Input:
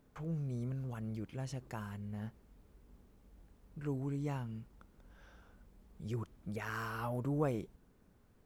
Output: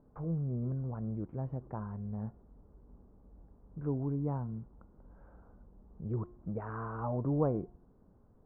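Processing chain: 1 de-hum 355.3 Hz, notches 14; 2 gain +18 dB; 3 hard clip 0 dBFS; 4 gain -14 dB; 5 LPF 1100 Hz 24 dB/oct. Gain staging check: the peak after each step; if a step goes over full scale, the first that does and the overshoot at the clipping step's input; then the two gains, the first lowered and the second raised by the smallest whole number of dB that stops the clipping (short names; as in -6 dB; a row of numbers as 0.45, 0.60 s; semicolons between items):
-21.5, -3.5, -3.5, -17.5, -18.0 dBFS; no overload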